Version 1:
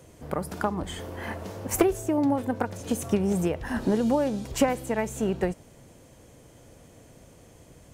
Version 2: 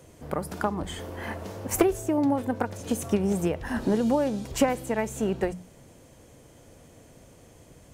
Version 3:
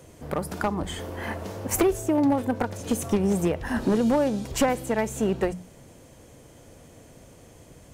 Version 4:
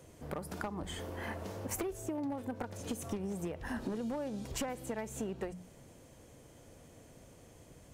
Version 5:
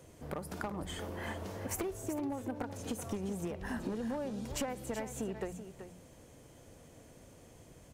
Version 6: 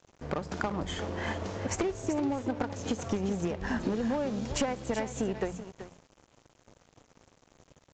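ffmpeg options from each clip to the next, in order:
ffmpeg -i in.wav -af "bandreject=frequency=60:width_type=h:width=6,bandreject=frequency=120:width_type=h:width=6,bandreject=frequency=180:width_type=h:width=6" out.wav
ffmpeg -i in.wav -af "asoftclip=type=hard:threshold=-18dB,volume=2.5dB" out.wav
ffmpeg -i in.wav -af "acompressor=threshold=-28dB:ratio=6,volume=-7dB" out.wav
ffmpeg -i in.wav -af "aecho=1:1:381:0.299" out.wav
ffmpeg -i in.wav -af "aeval=exprs='sgn(val(0))*max(abs(val(0))-0.00224,0)':channel_layout=same,aresample=16000,aresample=44100,volume=8dB" out.wav

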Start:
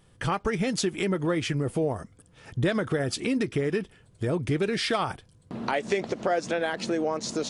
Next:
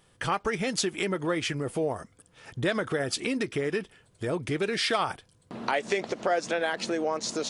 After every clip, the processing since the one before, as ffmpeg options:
ffmpeg -i in.wav -af "lowshelf=frequency=300:gain=-9.5,volume=1.5dB" out.wav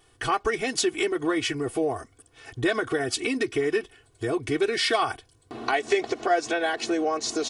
ffmpeg -i in.wav -af "aecho=1:1:2.7:0.99" out.wav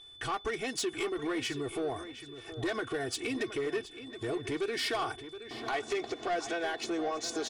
ffmpeg -i in.wav -filter_complex "[0:a]aeval=exprs='val(0)+0.00631*sin(2*PI*3500*n/s)':channel_layout=same,asoftclip=type=tanh:threshold=-20.5dB,asplit=2[link_01][link_02];[link_02]adelay=721,lowpass=frequency=4600:poles=1,volume=-12dB,asplit=2[link_03][link_04];[link_04]adelay=721,lowpass=frequency=4600:poles=1,volume=0.37,asplit=2[link_05][link_06];[link_06]adelay=721,lowpass=frequency=4600:poles=1,volume=0.37,asplit=2[link_07][link_08];[link_08]adelay=721,lowpass=frequency=4600:poles=1,volume=0.37[link_09];[link_01][link_03][link_05][link_07][link_09]amix=inputs=5:normalize=0,volume=-6dB" out.wav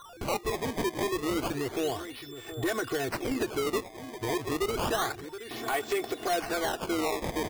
ffmpeg -i in.wav -af "acrusher=samples=18:mix=1:aa=0.000001:lfo=1:lforange=28.8:lforate=0.3,volume=3.5dB" out.wav

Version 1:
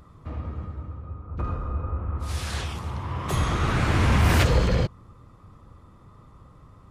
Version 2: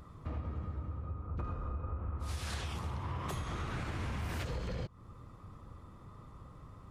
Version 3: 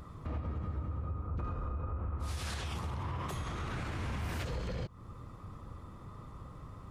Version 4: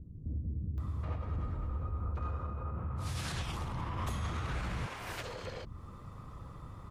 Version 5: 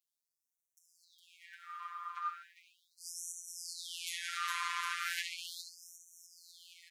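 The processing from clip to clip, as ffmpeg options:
ffmpeg -i in.wav -af "alimiter=limit=-19.5dB:level=0:latency=1:release=332,acompressor=threshold=-33dB:ratio=6,volume=-2dB" out.wav
ffmpeg -i in.wav -af "alimiter=level_in=9.5dB:limit=-24dB:level=0:latency=1:release=63,volume=-9.5dB,volume=4dB" out.wav
ffmpeg -i in.wav -filter_complex "[0:a]acrossover=split=330[link_01][link_02];[link_02]adelay=780[link_03];[link_01][link_03]amix=inputs=2:normalize=0,volume=1dB" out.wav
ffmpeg -i in.wav -af "aecho=1:1:410|758.5|1055|1307|1521:0.631|0.398|0.251|0.158|0.1,afftfilt=real='hypot(re,im)*cos(PI*b)':imag='0':win_size=1024:overlap=0.75,afftfilt=real='re*gte(b*sr/1024,930*pow(5700/930,0.5+0.5*sin(2*PI*0.37*pts/sr)))':imag='im*gte(b*sr/1024,930*pow(5700/930,0.5+0.5*sin(2*PI*0.37*pts/sr)))':win_size=1024:overlap=0.75,volume=9.5dB" out.wav

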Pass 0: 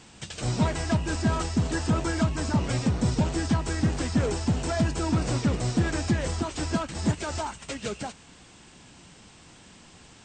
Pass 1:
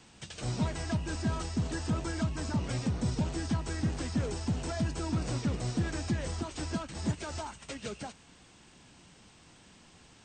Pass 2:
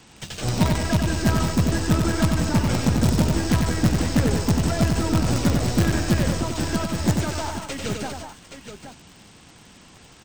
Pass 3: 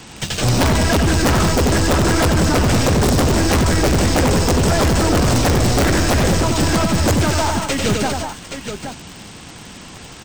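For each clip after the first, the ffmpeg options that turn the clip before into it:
ffmpeg -i in.wav -filter_complex "[0:a]bandreject=frequency=7400:width=17,acrossover=split=260|3000[link_01][link_02][link_03];[link_02]acompressor=threshold=-32dB:ratio=2[link_04];[link_01][link_04][link_03]amix=inputs=3:normalize=0,volume=-6dB" out.wav
ffmpeg -i in.wav -filter_complex "[0:a]asplit=2[link_01][link_02];[link_02]acrusher=bits=5:dc=4:mix=0:aa=0.000001,volume=-4dB[link_03];[link_01][link_03]amix=inputs=2:normalize=0,aecho=1:1:93|197|822:0.596|0.282|0.335,volume=6.5dB" out.wav
ffmpeg -i in.wav -af "aeval=exprs='0.501*sin(PI/2*4.47*val(0)/0.501)':channel_layout=same,volume=-5dB" out.wav

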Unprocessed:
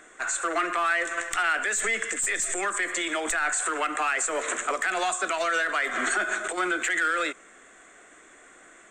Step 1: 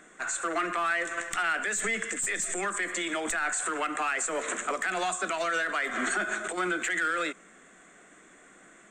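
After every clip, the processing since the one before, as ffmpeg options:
ffmpeg -i in.wav -af "equalizer=frequency=180:width=1.6:gain=12.5,volume=-3.5dB" out.wav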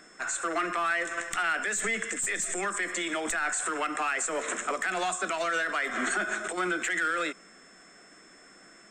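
ffmpeg -i in.wav -af "aeval=exprs='val(0)+0.00126*sin(2*PI*5300*n/s)':channel_layout=same" out.wav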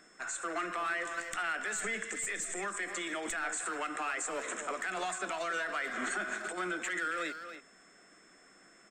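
ffmpeg -i in.wav -filter_complex "[0:a]asplit=2[link_01][link_02];[link_02]adelay=280,highpass=300,lowpass=3400,asoftclip=type=hard:threshold=-26.5dB,volume=-8dB[link_03];[link_01][link_03]amix=inputs=2:normalize=0,volume=-6.5dB" out.wav

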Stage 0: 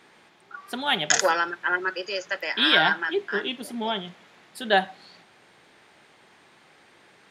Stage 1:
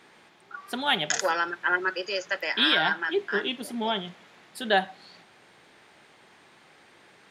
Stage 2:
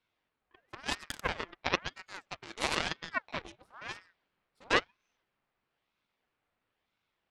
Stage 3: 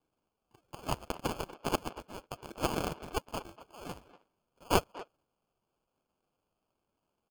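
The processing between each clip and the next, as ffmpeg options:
ffmpeg -i in.wav -af "alimiter=limit=-10.5dB:level=0:latency=1:release=458" out.wav
ffmpeg -i in.wav -af "aemphasis=mode=reproduction:type=75kf,aeval=exprs='0.237*(cos(1*acos(clip(val(0)/0.237,-1,1)))-cos(1*PI/2))+0.075*(cos(2*acos(clip(val(0)/0.237,-1,1)))-cos(2*PI/2))+0.075*(cos(3*acos(clip(val(0)/0.237,-1,1)))-cos(3*PI/2))':channel_layout=same,aeval=exprs='val(0)*sin(2*PI*1100*n/s+1100*0.7/1*sin(2*PI*1*n/s))':channel_layout=same,volume=3dB" out.wav
ffmpeg -i in.wav -filter_complex "[0:a]acrossover=split=230[link_01][link_02];[link_02]acrusher=samples=23:mix=1:aa=0.000001[link_03];[link_01][link_03]amix=inputs=2:normalize=0,asplit=2[link_04][link_05];[link_05]adelay=240,highpass=300,lowpass=3400,asoftclip=type=hard:threshold=-19dB,volume=-15dB[link_06];[link_04][link_06]amix=inputs=2:normalize=0" out.wav

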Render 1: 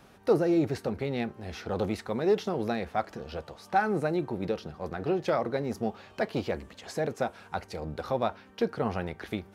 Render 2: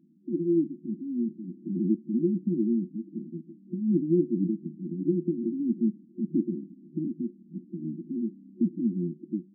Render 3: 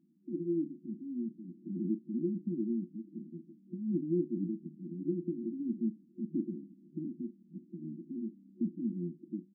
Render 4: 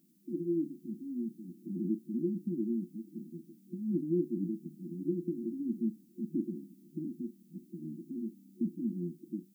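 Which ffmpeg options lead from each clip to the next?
ffmpeg -i in.wav -af "afftfilt=real='re*between(b*sr/4096,160,360)':imag='im*between(b*sr/4096,160,360)':win_size=4096:overlap=0.75,dynaudnorm=framelen=830:gausssize=3:maxgain=8.5dB" out.wav
ffmpeg -i in.wav -filter_complex "[0:a]asplit=2[link_01][link_02];[link_02]adelay=40,volume=-13.5dB[link_03];[link_01][link_03]amix=inputs=2:normalize=0,volume=-8dB" out.wav
ffmpeg -i in.wav -af "crystalizer=i=8.5:c=0" out.wav

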